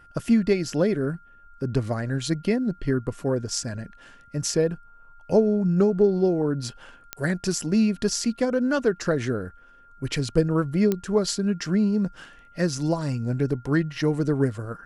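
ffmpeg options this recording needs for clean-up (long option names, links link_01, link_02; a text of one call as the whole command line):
ffmpeg -i in.wav -af "adeclick=threshold=4,bandreject=frequency=1400:width=30" out.wav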